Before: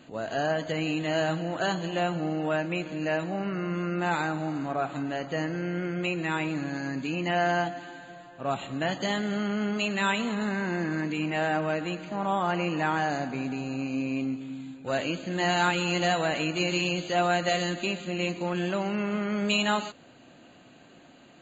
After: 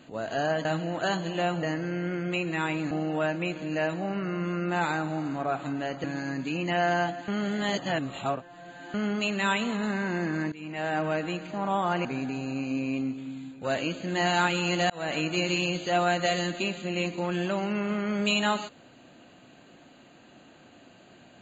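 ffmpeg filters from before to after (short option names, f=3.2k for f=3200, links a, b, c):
-filter_complex "[0:a]asplit=10[a][b][c][d][e][f][g][h][i][j];[a]atrim=end=0.652[k];[b]atrim=start=1.228:end=2.212[l];[c]atrim=start=5.338:end=6.622[m];[d]atrim=start=2.208:end=5.342[n];[e]atrim=start=6.618:end=7.862[o];[f]atrim=start=7.858:end=9.522,asetpts=PTS-STARTPTS,areverse[p];[g]atrim=start=9.518:end=11.1,asetpts=PTS-STARTPTS,afade=t=out:st=1.578:d=0.004:c=hsin:silence=0.125893[q];[h]atrim=start=11.1:end=12.632,asetpts=PTS-STARTPTS,afade=t=in:d=0.52:silence=0.125893[r];[i]atrim=start=13.278:end=16.13,asetpts=PTS-STARTPTS,afade=t=out:st=2.848:d=0.004:c=hsin[s];[j]atrim=start=16.13,asetpts=PTS-STARTPTS,afade=t=in:d=0.25[t];[k][l]acrossfade=d=0.004:c1=hsin:c2=hsin[u];[u][m]acrossfade=d=0.004:c1=hsin:c2=hsin[v];[v][n]acrossfade=d=0.004:c1=hsin:c2=hsin[w];[w][o]acrossfade=d=0.004:c1=hsin:c2=hsin[x];[x][p]acrossfade=d=0.004:c1=hsin:c2=hsin[y];[q][r]concat=n=2:v=0:a=1[z];[y][z]acrossfade=d=0.004:c1=hsin:c2=hsin[aa];[s][t]concat=n=2:v=0:a=1[ab];[aa][ab]acrossfade=d=0.004:c1=hsin:c2=hsin"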